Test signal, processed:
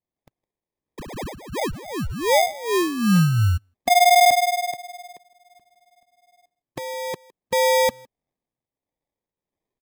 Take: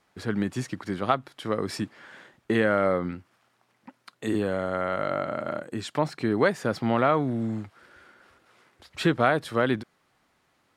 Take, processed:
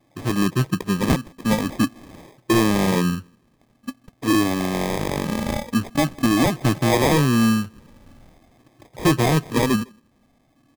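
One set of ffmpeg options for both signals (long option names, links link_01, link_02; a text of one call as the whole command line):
ffmpeg -i in.wav -filter_complex "[0:a]afftfilt=real='re*pow(10,15/40*sin(2*PI*(0.78*log(max(b,1)*sr/1024/100)/log(2)-(0.46)*(pts-256)/sr)))':imag='im*pow(10,15/40*sin(2*PI*(0.78*log(max(b,1)*sr/1024/100)/log(2)-(0.46)*(pts-256)/sr)))':win_size=1024:overlap=0.75,equalizer=frequency=125:width_type=o:width=1:gain=6,equalizer=frequency=250:width_type=o:width=1:gain=9,equalizer=frequency=500:width_type=o:width=1:gain=-5,equalizer=frequency=1000:width_type=o:width=1:gain=7,equalizer=frequency=2000:width_type=o:width=1:gain=-4,equalizer=frequency=4000:width_type=o:width=1:gain=-4,equalizer=frequency=8000:width_type=o:width=1:gain=-7,acrossover=split=490[link_01][link_02];[link_01]aeval=exprs='val(0)*(1-0.5/2+0.5/2*cos(2*PI*1.5*n/s))':channel_layout=same[link_03];[link_02]aeval=exprs='val(0)*(1-0.5/2-0.5/2*cos(2*PI*1.5*n/s))':channel_layout=same[link_04];[link_03][link_04]amix=inputs=2:normalize=0,volume=16.5dB,asoftclip=hard,volume=-16.5dB,asplit=2[link_05][link_06];[link_06]adelay=160,highpass=300,lowpass=3400,asoftclip=type=hard:threshold=-25dB,volume=-23dB[link_07];[link_05][link_07]amix=inputs=2:normalize=0,acrusher=samples=31:mix=1:aa=0.000001,volume=4.5dB" out.wav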